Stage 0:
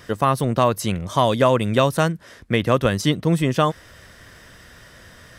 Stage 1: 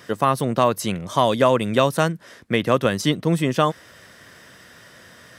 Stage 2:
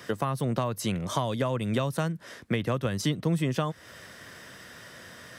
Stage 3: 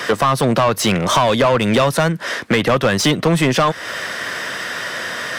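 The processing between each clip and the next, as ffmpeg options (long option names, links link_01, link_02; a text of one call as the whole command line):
ffmpeg -i in.wav -af "highpass=140" out.wav
ffmpeg -i in.wav -filter_complex "[0:a]acrossover=split=140[link_01][link_02];[link_02]acompressor=threshold=-26dB:ratio=10[link_03];[link_01][link_03]amix=inputs=2:normalize=0" out.wav
ffmpeg -i in.wav -filter_complex "[0:a]asplit=2[link_01][link_02];[link_02]highpass=frequency=720:poles=1,volume=23dB,asoftclip=type=tanh:threshold=-12.5dB[link_03];[link_01][link_03]amix=inputs=2:normalize=0,lowpass=frequency=3700:poles=1,volume=-6dB,volume=7.5dB" out.wav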